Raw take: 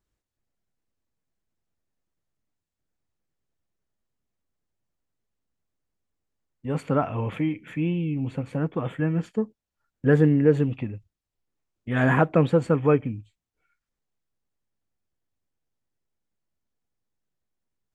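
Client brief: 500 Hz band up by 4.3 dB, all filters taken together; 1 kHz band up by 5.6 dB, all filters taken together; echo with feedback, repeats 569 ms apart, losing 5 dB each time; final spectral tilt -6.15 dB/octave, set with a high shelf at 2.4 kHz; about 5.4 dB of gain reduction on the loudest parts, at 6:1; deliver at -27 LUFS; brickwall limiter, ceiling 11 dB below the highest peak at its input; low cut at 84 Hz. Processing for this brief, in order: high-pass 84 Hz; peaking EQ 500 Hz +3.5 dB; peaking EQ 1 kHz +7 dB; treble shelf 2.4 kHz -4 dB; compression 6:1, threshold -16 dBFS; peak limiter -17.5 dBFS; feedback delay 569 ms, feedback 56%, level -5 dB; trim +1.5 dB

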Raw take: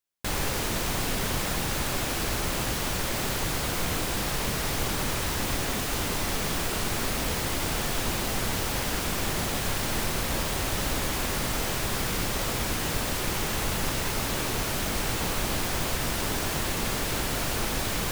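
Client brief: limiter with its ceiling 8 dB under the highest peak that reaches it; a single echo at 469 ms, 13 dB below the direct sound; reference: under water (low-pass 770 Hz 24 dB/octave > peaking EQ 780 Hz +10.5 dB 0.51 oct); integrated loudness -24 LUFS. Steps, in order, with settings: peak limiter -22 dBFS; low-pass 770 Hz 24 dB/octave; peaking EQ 780 Hz +10.5 dB 0.51 oct; delay 469 ms -13 dB; trim +11 dB

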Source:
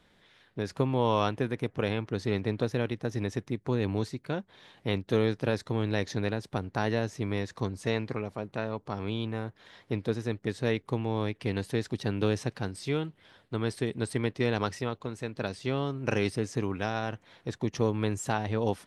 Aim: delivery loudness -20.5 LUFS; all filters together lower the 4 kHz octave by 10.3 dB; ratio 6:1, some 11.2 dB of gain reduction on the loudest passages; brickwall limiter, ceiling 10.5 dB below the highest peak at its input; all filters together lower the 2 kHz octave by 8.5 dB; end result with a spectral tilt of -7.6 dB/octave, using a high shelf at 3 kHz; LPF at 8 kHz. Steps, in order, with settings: low-pass 8 kHz; peaking EQ 2 kHz -8.5 dB; treble shelf 3 kHz -3 dB; peaking EQ 4 kHz -7.5 dB; compression 6:1, threshold -33 dBFS; trim +23 dB; peak limiter -7.5 dBFS

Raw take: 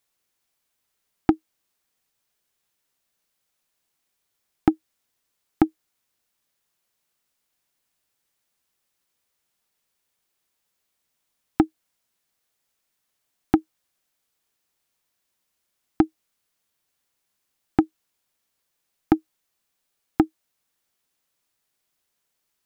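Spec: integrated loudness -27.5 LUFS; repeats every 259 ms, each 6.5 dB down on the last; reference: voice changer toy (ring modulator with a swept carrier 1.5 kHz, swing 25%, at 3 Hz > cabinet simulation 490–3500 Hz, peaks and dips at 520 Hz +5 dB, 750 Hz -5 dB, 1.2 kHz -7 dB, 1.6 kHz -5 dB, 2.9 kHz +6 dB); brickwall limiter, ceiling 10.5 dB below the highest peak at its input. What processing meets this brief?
peak limiter -13.5 dBFS; feedback delay 259 ms, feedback 47%, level -6.5 dB; ring modulator with a swept carrier 1.5 kHz, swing 25%, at 3 Hz; cabinet simulation 490–3500 Hz, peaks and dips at 520 Hz +5 dB, 750 Hz -5 dB, 1.2 kHz -7 dB, 1.6 kHz -5 dB, 2.9 kHz +6 dB; trim +12.5 dB

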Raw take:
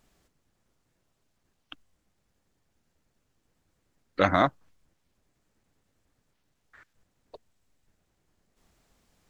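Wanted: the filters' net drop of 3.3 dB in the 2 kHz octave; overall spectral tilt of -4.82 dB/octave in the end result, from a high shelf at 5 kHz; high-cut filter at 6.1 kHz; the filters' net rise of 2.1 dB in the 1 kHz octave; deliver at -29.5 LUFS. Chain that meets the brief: low-pass 6.1 kHz; peaking EQ 1 kHz +5 dB; peaking EQ 2 kHz -5.5 dB; treble shelf 5 kHz -7.5 dB; trim -4.5 dB

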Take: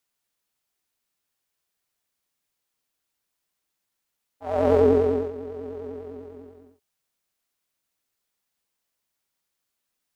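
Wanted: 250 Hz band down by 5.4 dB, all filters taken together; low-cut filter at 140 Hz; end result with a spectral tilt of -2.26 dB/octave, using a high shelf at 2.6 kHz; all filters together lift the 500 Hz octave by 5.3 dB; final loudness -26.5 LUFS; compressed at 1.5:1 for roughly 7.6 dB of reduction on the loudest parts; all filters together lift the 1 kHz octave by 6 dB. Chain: high-pass 140 Hz; peaking EQ 250 Hz -8 dB; peaking EQ 500 Hz +7.5 dB; peaking EQ 1 kHz +5 dB; treble shelf 2.6 kHz +3.5 dB; compression 1.5:1, threshold -31 dBFS; trim -0.5 dB

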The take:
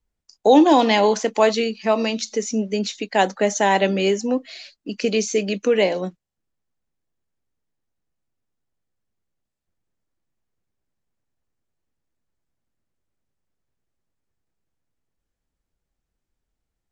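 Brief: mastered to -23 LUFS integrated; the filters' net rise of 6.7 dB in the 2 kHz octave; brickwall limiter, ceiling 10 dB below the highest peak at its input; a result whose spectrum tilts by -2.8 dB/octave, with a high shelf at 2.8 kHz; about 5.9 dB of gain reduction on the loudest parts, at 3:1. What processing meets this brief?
peaking EQ 2 kHz +5 dB; treble shelf 2.8 kHz +7 dB; compression 3:1, threshold -16 dBFS; trim +1.5 dB; peak limiter -13.5 dBFS

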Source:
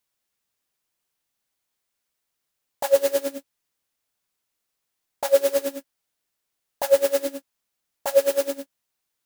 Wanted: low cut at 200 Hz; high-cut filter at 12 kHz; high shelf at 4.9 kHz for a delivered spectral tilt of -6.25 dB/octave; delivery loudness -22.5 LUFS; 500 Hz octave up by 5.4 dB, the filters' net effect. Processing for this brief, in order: high-pass 200 Hz; low-pass 12 kHz; peaking EQ 500 Hz +6 dB; treble shelf 4.9 kHz -4.5 dB; trim -4.5 dB

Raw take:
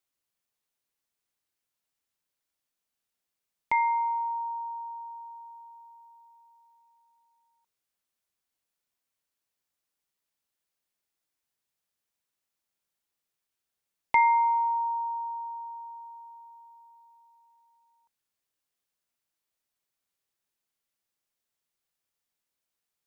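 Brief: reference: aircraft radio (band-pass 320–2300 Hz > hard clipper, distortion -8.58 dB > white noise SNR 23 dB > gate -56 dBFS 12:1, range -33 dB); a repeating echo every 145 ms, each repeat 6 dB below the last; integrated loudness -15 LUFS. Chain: band-pass 320–2300 Hz; feedback delay 145 ms, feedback 50%, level -6 dB; hard clipper -25 dBFS; white noise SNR 23 dB; gate -56 dBFS 12:1, range -33 dB; trim +16 dB

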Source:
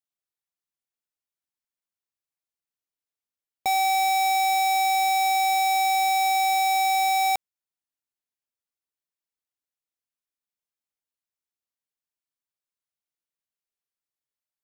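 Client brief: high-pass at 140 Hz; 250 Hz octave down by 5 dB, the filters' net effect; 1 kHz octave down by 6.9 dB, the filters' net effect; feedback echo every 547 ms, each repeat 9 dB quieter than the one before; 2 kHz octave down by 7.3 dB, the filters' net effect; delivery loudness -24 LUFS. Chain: high-pass 140 Hz; peaking EQ 250 Hz -8 dB; peaking EQ 1 kHz -9 dB; peaking EQ 2 kHz -7 dB; feedback delay 547 ms, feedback 35%, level -9 dB; trim +3.5 dB

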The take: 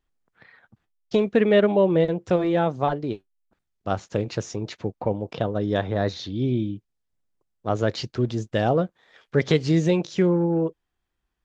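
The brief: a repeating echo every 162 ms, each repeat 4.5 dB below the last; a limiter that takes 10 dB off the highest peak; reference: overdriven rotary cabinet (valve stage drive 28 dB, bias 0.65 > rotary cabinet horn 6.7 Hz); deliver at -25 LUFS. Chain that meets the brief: peak limiter -16.5 dBFS; feedback delay 162 ms, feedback 60%, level -4.5 dB; valve stage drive 28 dB, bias 0.65; rotary cabinet horn 6.7 Hz; trim +10.5 dB

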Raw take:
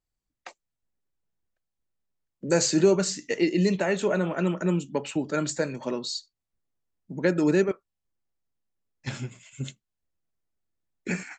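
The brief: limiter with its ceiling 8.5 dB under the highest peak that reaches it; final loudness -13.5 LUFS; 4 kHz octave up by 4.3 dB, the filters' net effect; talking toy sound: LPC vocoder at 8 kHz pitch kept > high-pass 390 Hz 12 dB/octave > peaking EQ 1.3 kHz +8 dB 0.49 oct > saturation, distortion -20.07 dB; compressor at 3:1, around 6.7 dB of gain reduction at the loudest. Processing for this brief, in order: peaking EQ 4 kHz +5 dB; compression 3:1, threshold -23 dBFS; peak limiter -21 dBFS; LPC vocoder at 8 kHz pitch kept; high-pass 390 Hz 12 dB/octave; peaking EQ 1.3 kHz +8 dB 0.49 oct; saturation -24 dBFS; trim +24 dB

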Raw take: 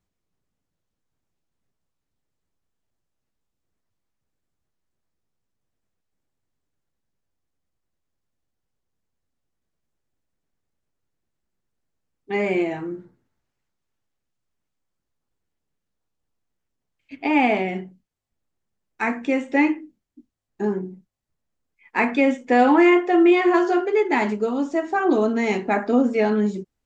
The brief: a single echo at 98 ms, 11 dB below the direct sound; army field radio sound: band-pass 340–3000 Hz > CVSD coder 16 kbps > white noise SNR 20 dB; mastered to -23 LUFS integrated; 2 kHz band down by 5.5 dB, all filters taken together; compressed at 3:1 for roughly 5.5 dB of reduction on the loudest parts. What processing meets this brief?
peaking EQ 2 kHz -5.5 dB; compression 3:1, threshold -19 dBFS; band-pass 340–3000 Hz; delay 98 ms -11 dB; CVSD coder 16 kbps; white noise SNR 20 dB; trim +4 dB

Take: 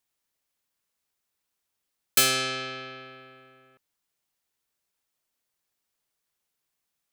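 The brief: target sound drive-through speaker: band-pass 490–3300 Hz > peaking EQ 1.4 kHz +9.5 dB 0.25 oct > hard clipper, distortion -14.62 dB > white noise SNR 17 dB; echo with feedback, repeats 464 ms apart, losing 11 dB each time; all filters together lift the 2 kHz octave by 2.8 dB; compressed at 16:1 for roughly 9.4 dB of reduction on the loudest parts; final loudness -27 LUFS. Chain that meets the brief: peaking EQ 2 kHz +3 dB; compression 16:1, threshold -24 dBFS; band-pass 490–3300 Hz; peaking EQ 1.4 kHz +9.5 dB 0.25 oct; feedback delay 464 ms, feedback 28%, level -11 dB; hard clipper -27.5 dBFS; white noise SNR 17 dB; trim +6.5 dB

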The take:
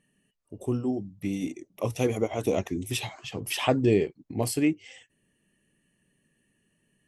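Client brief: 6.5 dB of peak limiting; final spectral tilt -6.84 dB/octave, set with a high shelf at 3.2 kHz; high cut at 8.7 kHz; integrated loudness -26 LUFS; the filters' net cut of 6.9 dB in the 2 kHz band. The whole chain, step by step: low-pass 8.7 kHz; peaking EQ 2 kHz -5 dB; treble shelf 3.2 kHz -9 dB; trim +5 dB; peak limiter -12 dBFS

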